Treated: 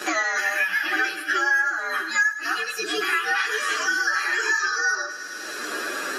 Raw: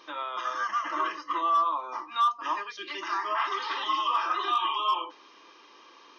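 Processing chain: frequency axis rescaled in octaves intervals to 123%; thinning echo 106 ms, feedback 69%, high-pass 910 Hz, level -14.5 dB; three bands compressed up and down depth 100%; trim +8 dB

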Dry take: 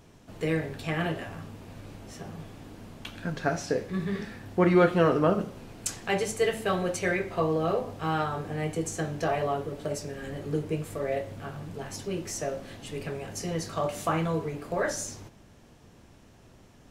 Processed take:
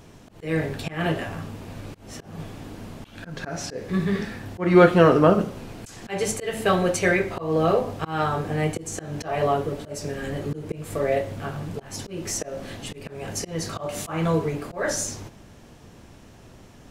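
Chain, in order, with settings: slow attack 210 ms; trim +7 dB

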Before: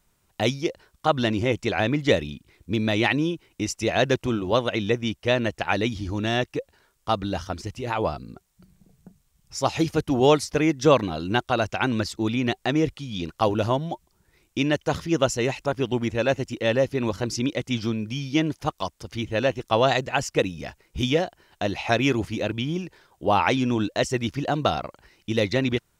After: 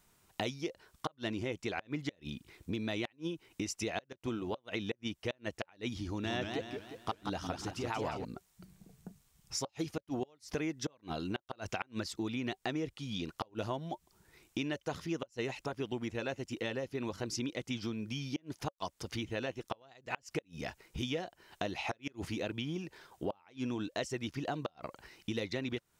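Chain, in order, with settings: inverted gate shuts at -10 dBFS, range -35 dB; compression 4:1, threshold -36 dBFS, peak gain reduction 16.5 dB; bass shelf 96 Hz -8.5 dB; band-stop 560 Hz, Q 14; 6.06–8.25 s: modulated delay 178 ms, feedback 49%, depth 184 cents, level -5 dB; trim +1 dB

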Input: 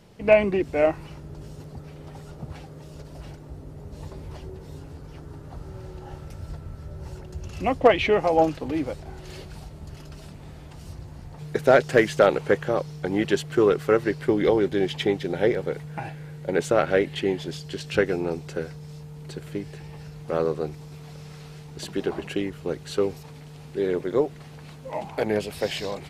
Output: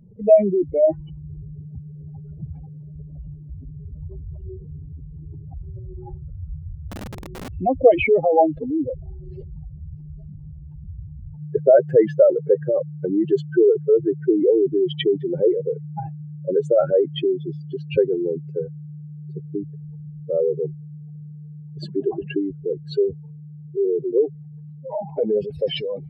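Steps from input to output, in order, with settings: spectral contrast enhancement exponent 3.2; 6.90–7.54 s: integer overflow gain 33.5 dB; trim +4.5 dB

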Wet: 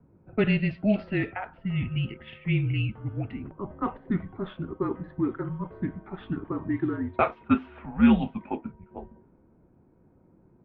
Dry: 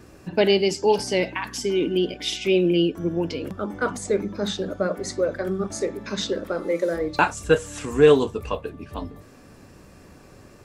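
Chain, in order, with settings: level-controlled noise filter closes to 520 Hz, open at -14.5 dBFS; distance through air 87 m; mistuned SSB -220 Hz 350–3400 Hz; trim -3 dB

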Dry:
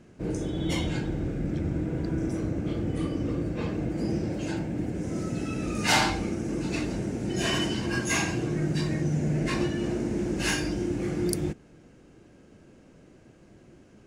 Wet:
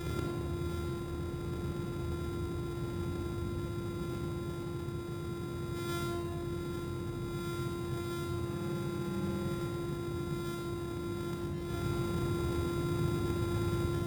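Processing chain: sorted samples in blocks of 128 samples; bass shelf 240 Hz +9.5 dB; in parallel at 0 dB: compression, threshold -35 dBFS, peak gain reduction 18 dB; on the sum: inverted gate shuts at -26 dBFS, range -25 dB; high-pass 74 Hz; on a send: reverse echo 124 ms -4.5 dB; on the sum: simulated room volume 3500 m³, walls mixed, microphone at 4.1 m; trim +2 dB

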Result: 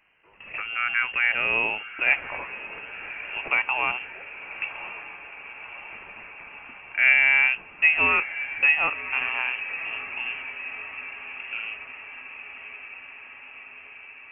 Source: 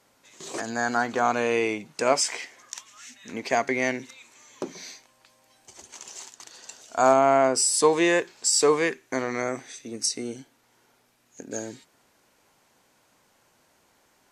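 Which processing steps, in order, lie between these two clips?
frequency inversion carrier 3 kHz; echo that smears into a reverb 1114 ms, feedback 69%, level -13 dB

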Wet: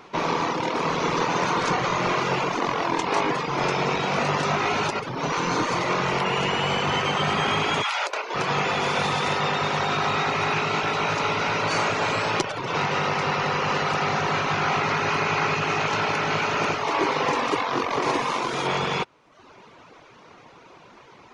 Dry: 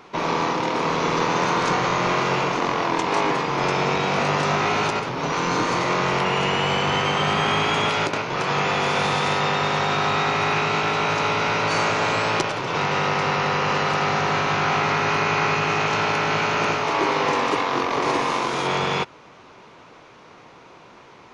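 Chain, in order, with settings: 7.82–8.34 s: high-pass 820 Hz -> 360 Hz 24 dB/octave; reverb removal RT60 0.78 s

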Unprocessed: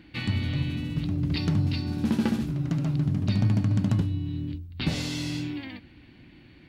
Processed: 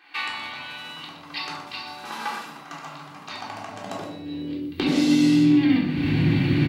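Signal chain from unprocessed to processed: recorder AGC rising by 47 dB/s; high-pass sweep 980 Hz -> 130 Hz, 3.32–6.06 s; saturation -9 dBFS, distortion -32 dB; on a send: delay 121 ms -11 dB; on the sum: simulated room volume 740 m³, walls furnished, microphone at 3.7 m; trim -1.5 dB

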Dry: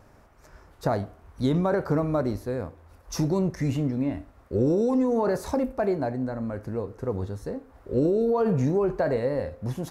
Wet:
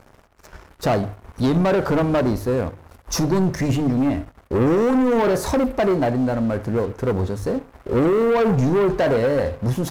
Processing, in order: waveshaping leveller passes 3; hum notches 50/100/150 Hz

